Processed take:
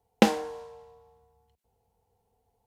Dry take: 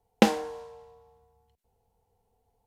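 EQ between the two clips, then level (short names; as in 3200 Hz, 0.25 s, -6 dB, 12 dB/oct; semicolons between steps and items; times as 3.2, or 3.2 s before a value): HPF 42 Hz; 0.0 dB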